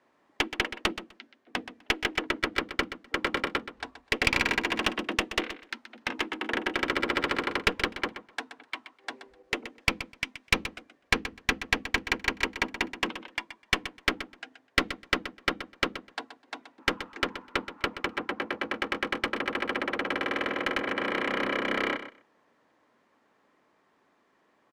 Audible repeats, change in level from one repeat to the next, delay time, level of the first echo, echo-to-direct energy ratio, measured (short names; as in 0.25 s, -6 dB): 2, -16.5 dB, 0.126 s, -12.0 dB, -12.0 dB